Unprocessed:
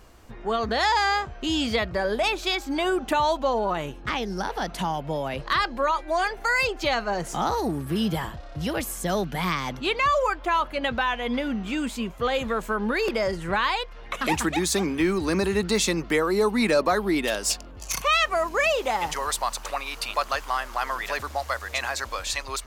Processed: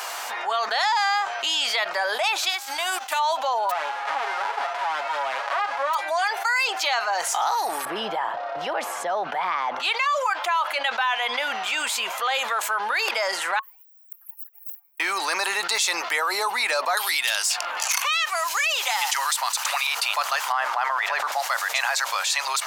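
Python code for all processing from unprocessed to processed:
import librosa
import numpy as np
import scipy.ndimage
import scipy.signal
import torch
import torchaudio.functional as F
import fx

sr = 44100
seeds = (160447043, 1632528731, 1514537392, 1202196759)

y = fx.envelope_flatten(x, sr, power=0.6, at=(2.49, 3.18), fade=0.02)
y = fx.upward_expand(y, sr, threshold_db=-38.0, expansion=2.5, at=(2.49, 3.18), fade=0.02)
y = fx.envelope_flatten(y, sr, power=0.1, at=(3.69, 5.93), fade=0.02)
y = fx.lowpass(y, sr, hz=1100.0, slope=12, at=(3.69, 5.93), fade=0.02)
y = fx.comb(y, sr, ms=7.2, depth=0.74, at=(3.69, 5.93), fade=0.02)
y = fx.chain(y, sr, fx.lowpass(hz=1100.0, slope=6),
    fx.tilt_eq(slope=-3.0), at=(7.85, 9.8))
y = fx.chain(y, sr, fx.cheby2_bandstop(low_hz=170.0, high_hz=8100.0, order=4, stop_db=80),
    fx.band_squash(depth_pct=40), at=(13.59, 15.0))
y = fx.chain(y, sr, fx.highpass(hz=310.0, slope=12),
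    fx.peak_eq(hz=500.0, db=-10.5, octaves=2.5),
    fx.band_squash(depth_pct=100), at=(16.97, 19.87))
y = fx.chain(y, sr, fx.lowpass(hz=1300.0, slope=6),
    fx.sustainer(db_per_s=34.0), at=(20.52, 21.32))
y = scipy.signal.sosfilt(scipy.signal.cheby1(3, 1.0, 790.0, 'highpass', fs=sr, output='sos'), y)
y = fx.notch(y, sr, hz=1100.0, q=20.0)
y = fx.env_flatten(y, sr, amount_pct=70)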